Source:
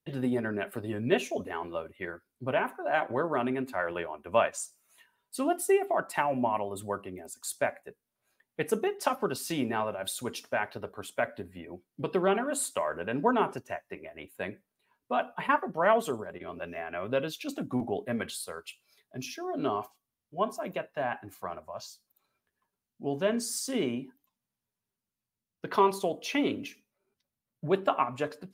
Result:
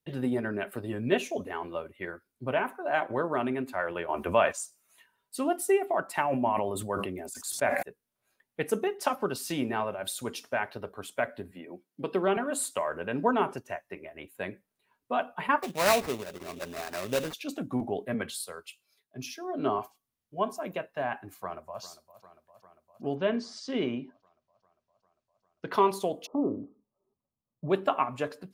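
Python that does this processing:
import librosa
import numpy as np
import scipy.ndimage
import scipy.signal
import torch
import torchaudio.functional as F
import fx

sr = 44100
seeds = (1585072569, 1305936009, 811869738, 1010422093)

y = fx.env_flatten(x, sr, amount_pct=50, at=(4.08, 4.51), fade=0.02)
y = fx.sustainer(y, sr, db_per_s=35.0, at=(6.23, 7.83))
y = fx.cheby1_highpass(y, sr, hz=210.0, order=2, at=(11.51, 12.37))
y = fx.sample_hold(y, sr, seeds[0], rate_hz=3200.0, jitter_pct=20, at=(15.62, 17.32), fade=0.02)
y = fx.band_widen(y, sr, depth_pct=40, at=(18.14, 19.79))
y = fx.echo_throw(y, sr, start_s=21.34, length_s=0.47, ms=400, feedback_pct=75, wet_db=-16.0)
y = fx.lowpass(y, sr, hz=fx.line((23.14, 4200.0), (25.7, 8000.0)), slope=24, at=(23.14, 25.7), fade=0.02)
y = fx.brickwall_lowpass(y, sr, high_hz=1300.0, at=(26.25, 27.68), fade=0.02)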